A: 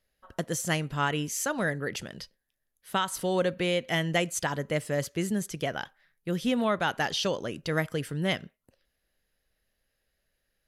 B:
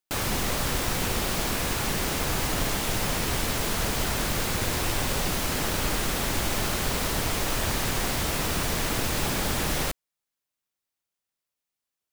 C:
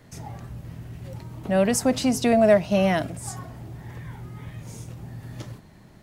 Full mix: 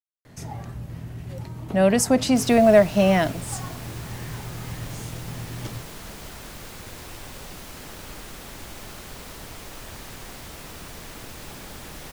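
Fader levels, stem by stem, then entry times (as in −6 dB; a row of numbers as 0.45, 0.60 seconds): muted, −12.5 dB, +2.5 dB; muted, 2.25 s, 0.25 s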